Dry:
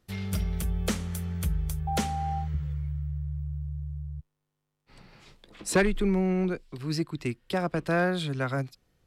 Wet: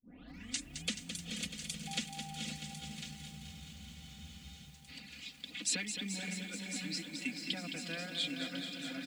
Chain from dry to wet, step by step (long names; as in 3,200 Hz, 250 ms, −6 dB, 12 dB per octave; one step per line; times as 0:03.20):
turntable start at the beginning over 0.87 s
loudspeaker in its box 160–8,000 Hz, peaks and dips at 170 Hz +3 dB, 270 Hz +10 dB, 430 Hz −9 dB, 680 Hz −3 dB, 1,000 Hz −7 dB, 5,700 Hz −5 dB
feedback delay with all-pass diffusion 486 ms, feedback 44%, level −7 dB
reverb reduction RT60 1.5 s
downward compressor 3 to 1, threshold −43 dBFS, peak gain reduction 18 dB
high shelf with overshoot 1,800 Hz +12.5 dB, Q 1.5
comb filter 4.1 ms, depth 82%
delay that swaps between a low-pass and a high-pass 525 ms, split 1,000 Hz, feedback 73%, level −8 dB
frozen spectrum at 0:03.41, 1.25 s
feedback echo at a low word length 215 ms, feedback 80%, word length 9 bits, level −8 dB
level −5 dB